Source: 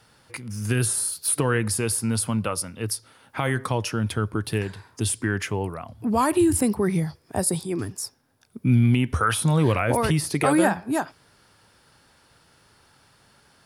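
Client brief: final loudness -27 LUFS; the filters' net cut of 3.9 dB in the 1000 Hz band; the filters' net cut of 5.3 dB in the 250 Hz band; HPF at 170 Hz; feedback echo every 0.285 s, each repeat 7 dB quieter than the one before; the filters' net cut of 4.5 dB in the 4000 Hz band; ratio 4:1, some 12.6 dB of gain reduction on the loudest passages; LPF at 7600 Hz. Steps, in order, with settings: HPF 170 Hz; LPF 7600 Hz; bell 250 Hz -5.5 dB; bell 1000 Hz -4.5 dB; bell 4000 Hz -5.5 dB; compressor 4:1, threshold -35 dBFS; feedback echo 0.285 s, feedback 45%, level -7 dB; gain +10.5 dB

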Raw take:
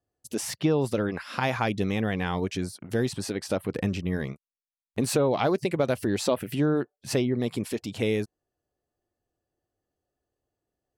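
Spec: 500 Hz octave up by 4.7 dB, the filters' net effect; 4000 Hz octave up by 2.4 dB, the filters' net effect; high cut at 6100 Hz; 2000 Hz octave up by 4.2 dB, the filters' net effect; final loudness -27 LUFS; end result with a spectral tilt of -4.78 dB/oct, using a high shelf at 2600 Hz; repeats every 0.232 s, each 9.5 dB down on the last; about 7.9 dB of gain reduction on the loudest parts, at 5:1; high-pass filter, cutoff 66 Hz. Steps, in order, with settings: HPF 66 Hz; LPF 6100 Hz; bell 500 Hz +5.5 dB; bell 2000 Hz +5.5 dB; high shelf 2600 Hz -3.5 dB; bell 4000 Hz +5 dB; compressor 5:1, threshold -24 dBFS; feedback echo 0.232 s, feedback 33%, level -9.5 dB; gain +2.5 dB

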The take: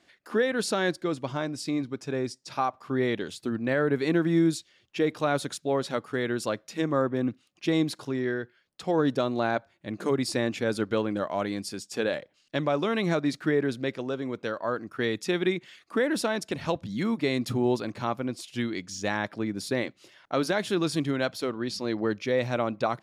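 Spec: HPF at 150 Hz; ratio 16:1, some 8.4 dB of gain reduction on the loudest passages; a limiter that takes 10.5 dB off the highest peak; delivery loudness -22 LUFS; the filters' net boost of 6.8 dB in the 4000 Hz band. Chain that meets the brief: HPF 150 Hz; bell 4000 Hz +8 dB; compressor 16:1, threshold -28 dBFS; gain +13.5 dB; limiter -10.5 dBFS

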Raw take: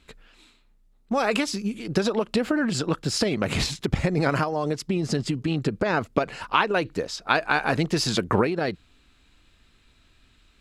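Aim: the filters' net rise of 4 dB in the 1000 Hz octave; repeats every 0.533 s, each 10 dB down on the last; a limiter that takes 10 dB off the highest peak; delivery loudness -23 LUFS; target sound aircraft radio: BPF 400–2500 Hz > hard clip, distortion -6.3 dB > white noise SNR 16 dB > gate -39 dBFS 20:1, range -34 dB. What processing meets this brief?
bell 1000 Hz +5.5 dB; limiter -11.5 dBFS; BPF 400–2500 Hz; feedback echo 0.533 s, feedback 32%, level -10 dB; hard clip -27 dBFS; white noise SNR 16 dB; gate -39 dBFS 20:1, range -34 dB; gain +9 dB

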